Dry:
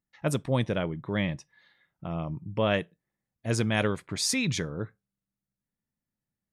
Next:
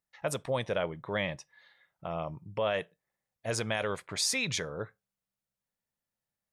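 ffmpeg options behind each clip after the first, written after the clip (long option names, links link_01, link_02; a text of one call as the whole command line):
ffmpeg -i in.wav -af "alimiter=limit=-20dB:level=0:latency=1:release=77,lowshelf=frequency=400:width_type=q:width=1.5:gain=-8,volume=1dB" out.wav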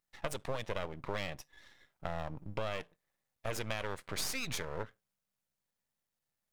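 ffmpeg -i in.wav -af "aeval=exprs='max(val(0),0)':channel_layout=same,acompressor=threshold=-38dB:ratio=4,volume=5dB" out.wav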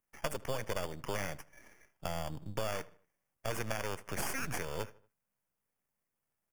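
ffmpeg -i in.wav -filter_complex "[0:a]acrossover=split=270|6800[link_01][link_02][link_03];[link_02]acrusher=samples=11:mix=1:aa=0.000001[link_04];[link_01][link_04][link_03]amix=inputs=3:normalize=0,asplit=2[link_05][link_06];[link_06]adelay=78,lowpass=frequency=3700:poles=1,volume=-20.5dB,asplit=2[link_07][link_08];[link_08]adelay=78,lowpass=frequency=3700:poles=1,volume=0.44,asplit=2[link_09][link_10];[link_10]adelay=78,lowpass=frequency=3700:poles=1,volume=0.44[link_11];[link_05][link_07][link_09][link_11]amix=inputs=4:normalize=0,volume=1dB" out.wav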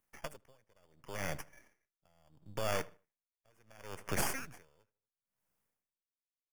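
ffmpeg -i in.wav -af "aeval=exprs='val(0)*pow(10,-38*(0.5-0.5*cos(2*PI*0.72*n/s))/20)':channel_layout=same,volume=4dB" out.wav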